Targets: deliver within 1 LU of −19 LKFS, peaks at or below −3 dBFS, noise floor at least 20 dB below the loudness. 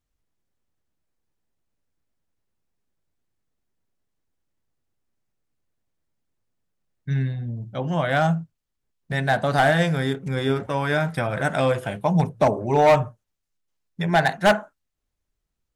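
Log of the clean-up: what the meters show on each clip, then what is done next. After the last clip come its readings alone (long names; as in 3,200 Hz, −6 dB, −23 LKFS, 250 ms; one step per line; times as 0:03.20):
share of clipped samples 0.4%; peaks flattened at −11.0 dBFS; integrated loudness −22.5 LKFS; sample peak −11.0 dBFS; target loudness −19.0 LKFS
→ clipped peaks rebuilt −11 dBFS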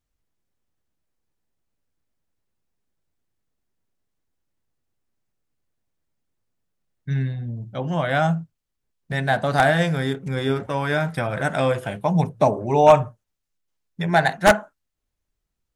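share of clipped samples 0.0%; integrated loudness −21.5 LKFS; sample peak −2.0 dBFS; target loudness −19.0 LKFS
→ level +2.5 dB
brickwall limiter −3 dBFS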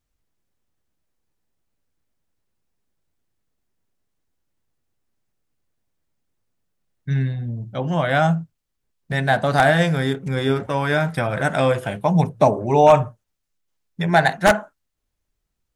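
integrated loudness −19.5 LKFS; sample peak −3.0 dBFS; background noise floor −77 dBFS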